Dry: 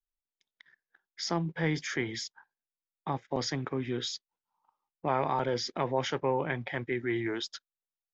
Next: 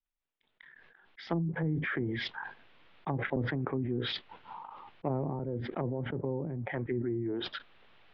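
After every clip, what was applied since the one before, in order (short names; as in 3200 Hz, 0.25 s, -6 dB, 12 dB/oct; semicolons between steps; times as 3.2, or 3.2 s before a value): steep low-pass 3400 Hz 36 dB/oct; treble ducked by the level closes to 310 Hz, closed at -27.5 dBFS; sustainer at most 20 dB/s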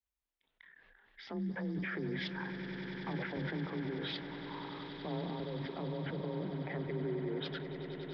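limiter -27 dBFS, peak gain reduction 10 dB; frequency shift +26 Hz; swelling echo 95 ms, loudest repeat 8, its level -14.5 dB; gain -4 dB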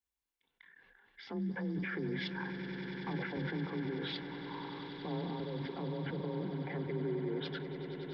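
notch comb 630 Hz; gain +1 dB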